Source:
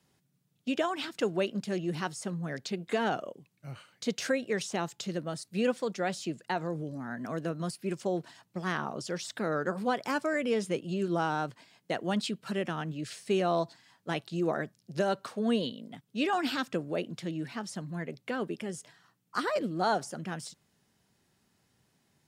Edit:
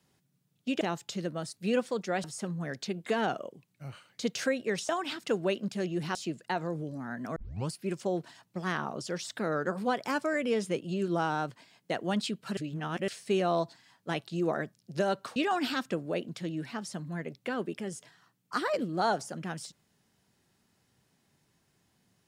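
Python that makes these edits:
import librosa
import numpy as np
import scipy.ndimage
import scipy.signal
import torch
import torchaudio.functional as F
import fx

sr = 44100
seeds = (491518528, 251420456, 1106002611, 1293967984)

y = fx.edit(x, sr, fx.swap(start_s=0.81, length_s=1.26, other_s=4.72, other_length_s=1.43),
    fx.tape_start(start_s=7.36, length_s=0.35),
    fx.reverse_span(start_s=12.57, length_s=0.51),
    fx.cut(start_s=15.36, length_s=0.82), tone=tone)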